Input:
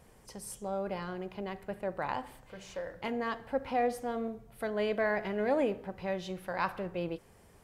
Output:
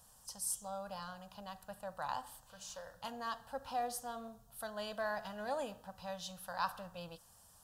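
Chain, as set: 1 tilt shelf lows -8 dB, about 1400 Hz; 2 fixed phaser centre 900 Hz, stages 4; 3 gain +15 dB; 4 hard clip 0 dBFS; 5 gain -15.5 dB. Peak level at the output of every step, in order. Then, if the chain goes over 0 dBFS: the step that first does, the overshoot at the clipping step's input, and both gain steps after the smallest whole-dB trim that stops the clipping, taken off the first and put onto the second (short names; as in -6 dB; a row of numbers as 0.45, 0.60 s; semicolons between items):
-16.5, -20.5, -5.5, -5.5, -21.0 dBFS; no overload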